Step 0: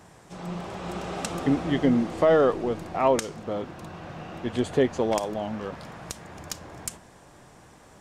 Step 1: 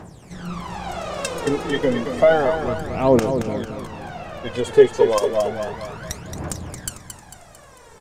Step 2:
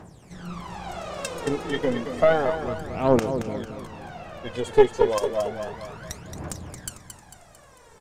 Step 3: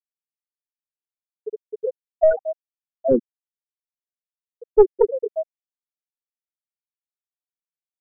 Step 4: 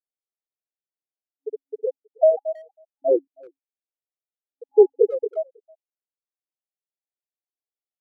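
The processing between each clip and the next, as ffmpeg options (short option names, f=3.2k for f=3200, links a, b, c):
-af "aphaser=in_gain=1:out_gain=1:delay=2.4:decay=0.77:speed=0.31:type=triangular,aecho=1:1:224|448|672|896|1120|1344:0.398|0.191|0.0917|0.044|0.0211|0.0101,volume=1.5dB"
-af "aeval=exprs='0.891*(cos(1*acos(clip(val(0)/0.891,-1,1)))-cos(1*PI/2))+0.251*(cos(2*acos(clip(val(0)/0.891,-1,1)))-cos(2*PI/2))+0.0141*(cos(7*acos(clip(val(0)/0.891,-1,1)))-cos(7*PI/2))':c=same,volume=-4.5dB"
-filter_complex "[0:a]afftfilt=real='re*gte(hypot(re,im),0.631)':imag='im*gte(hypot(re,im),0.631)':win_size=1024:overlap=0.75,asplit=2[a][b];[b]acontrast=21,volume=1.5dB[c];[a][c]amix=inputs=2:normalize=0,volume=-6dB"
-filter_complex "[0:a]afftfilt=real='re*between(b*sr/4096,270,830)':imag='im*between(b*sr/4096,270,830)':win_size=4096:overlap=0.75,asplit=2[a][b];[b]adelay=320,highpass=300,lowpass=3.4k,asoftclip=type=hard:threshold=-12dB,volume=-26dB[c];[a][c]amix=inputs=2:normalize=0"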